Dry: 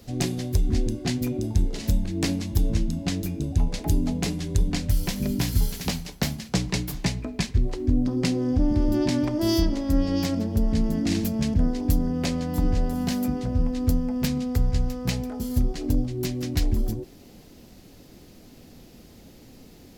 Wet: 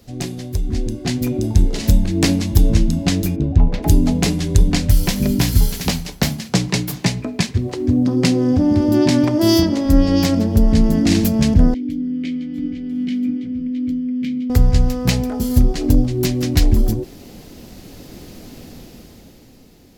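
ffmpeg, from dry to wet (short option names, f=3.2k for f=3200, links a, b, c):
-filter_complex "[0:a]asplit=3[a][b][c];[a]afade=t=out:st=3.35:d=0.02[d];[b]adynamicsmooth=sensitivity=1.5:basefreq=2.1k,afade=t=in:st=3.35:d=0.02,afade=t=out:st=3.82:d=0.02[e];[c]afade=t=in:st=3.82:d=0.02[f];[d][e][f]amix=inputs=3:normalize=0,asettb=1/sr,asplit=3[g][h][i];[g]atrim=end=6.294[j];[h]atrim=start=6.29:end=9.86,asetpts=PTS-STARTPTS,afade=t=in:d=0.004:c=qsin,afade=t=out:st=3.566:d=0.004:c=qsin,highpass=f=86:w=0.5412,highpass=f=86:w=1.3066[k];[i]atrim=start=9.856[l];[j][k]acrossfade=d=0.004:c1=hsin:c2=qsin[m];[m][l]acrossfade=d=0.004:c1=qsin:c2=hsin,asettb=1/sr,asplit=3[n][o][p];[n]atrim=end=11.744[q];[o]atrim=start=11.74:end=14.5,asetpts=PTS-STARTPTS,afade=t=in:d=0.004:c=qsin,afade=t=out:st=2.756:d=0.004:c=qsin,asplit=3[r][s][t];[r]bandpass=f=270:t=q:w=8,volume=0dB[u];[s]bandpass=f=2.29k:t=q:w=8,volume=-6dB[v];[t]bandpass=f=3.01k:t=q:w=8,volume=-9dB[w];[u][v][w]amix=inputs=3:normalize=0[x];[p]atrim=start=14.496[y];[q][x]acrossfade=d=0.004:c1=hsin:c2=qsin[z];[z][y]acrossfade=d=0.004:c1=qsin:c2=hsin,dynaudnorm=f=140:g=17:m=12.5dB"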